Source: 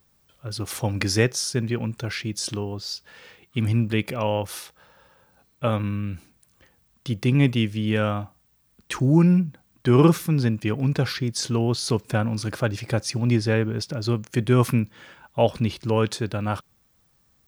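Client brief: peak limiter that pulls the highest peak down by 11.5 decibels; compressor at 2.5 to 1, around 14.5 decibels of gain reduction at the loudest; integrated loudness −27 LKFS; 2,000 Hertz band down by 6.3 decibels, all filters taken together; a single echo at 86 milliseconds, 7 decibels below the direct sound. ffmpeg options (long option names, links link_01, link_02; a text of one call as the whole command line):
ffmpeg -i in.wav -af "equalizer=frequency=2000:width_type=o:gain=-8.5,acompressor=threshold=-35dB:ratio=2.5,alimiter=level_in=3.5dB:limit=-24dB:level=0:latency=1,volume=-3.5dB,aecho=1:1:86:0.447,volume=10.5dB" out.wav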